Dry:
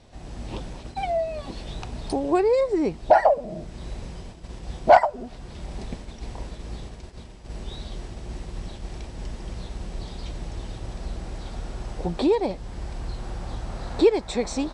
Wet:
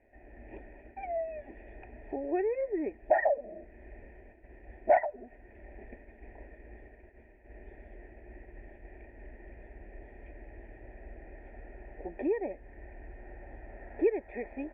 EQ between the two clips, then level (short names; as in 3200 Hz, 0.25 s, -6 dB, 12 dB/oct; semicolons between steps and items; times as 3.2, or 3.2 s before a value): vocal tract filter e; fixed phaser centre 770 Hz, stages 8; +6.0 dB